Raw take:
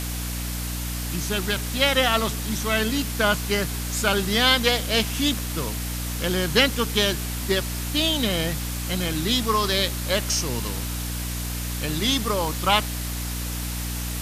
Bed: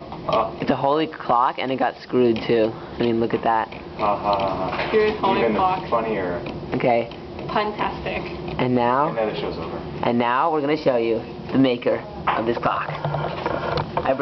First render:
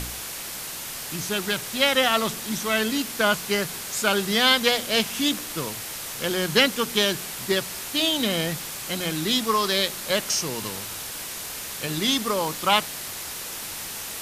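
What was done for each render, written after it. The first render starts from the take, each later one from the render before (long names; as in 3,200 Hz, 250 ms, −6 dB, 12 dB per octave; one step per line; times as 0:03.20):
hum removal 60 Hz, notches 5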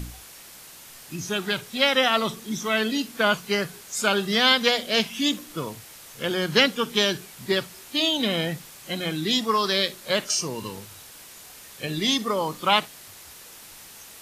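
noise reduction from a noise print 11 dB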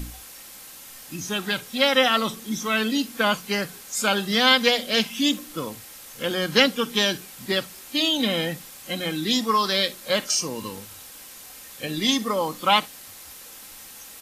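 high-shelf EQ 11,000 Hz +5 dB
comb filter 3.8 ms, depth 37%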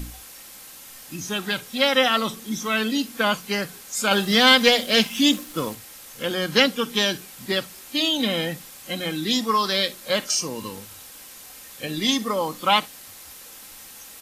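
0:04.11–0:05.75: leveller curve on the samples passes 1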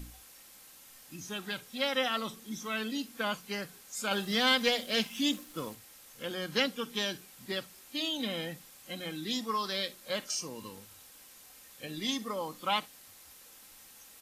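level −11.5 dB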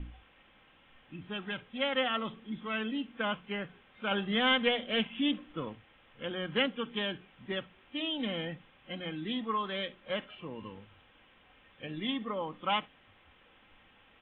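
Butterworth low-pass 3,400 Hz 96 dB per octave
low-shelf EQ 140 Hz +5 dB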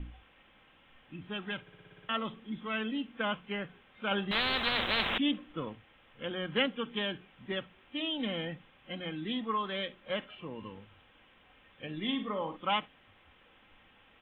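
0:01.61: stutter in place 0.06 s, 8 plays
0:04.31–0:05.18: every bin compressed towards the loudest bin 10 to 1
0:11.98–0:12.57: flutter between parallel walls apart 8.3 metres, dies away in 0.32 s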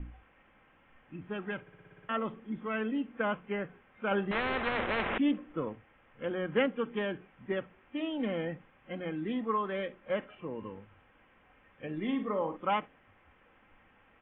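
low-pass filter 2,300 Hz 24 dB per octave
dynamic equaliser 430 Hz, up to +5 dB, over −50 dBFS, Q 1.1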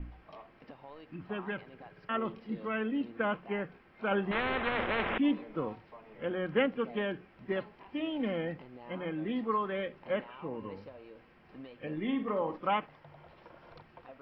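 mix in bed −31 dB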